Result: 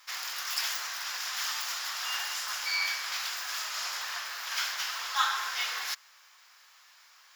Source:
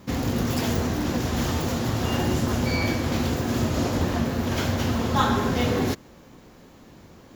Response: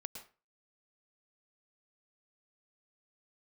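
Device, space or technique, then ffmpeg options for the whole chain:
headphones lying on a table: -af "highpass=f=1.2k:w=0.5412,highpass=f=1.2k:w=1.3066,equalizer=f=5.1k:t=o:w=0.26:g=6.5"

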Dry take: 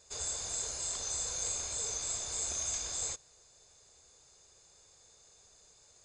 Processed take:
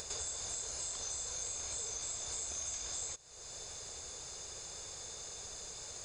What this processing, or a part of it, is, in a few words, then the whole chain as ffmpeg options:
upward and downward compression: -af "acompressor=mode=upward:threshold=-43dB:ratio=2.5,acompressor=threshold=-45dB:ratio=6,volume=6.5dB"

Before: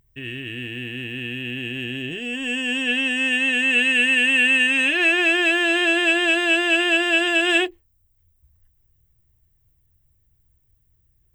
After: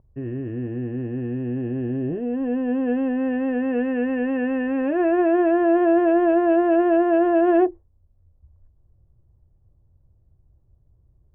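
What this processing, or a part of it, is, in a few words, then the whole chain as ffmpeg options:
under water: -af "lowpass=f=990:w=0.5412,lowpass=f=990:w=1.3066,equalizer=f=580:t=o:w=0.33:g=4.5,volume=6.5dB"

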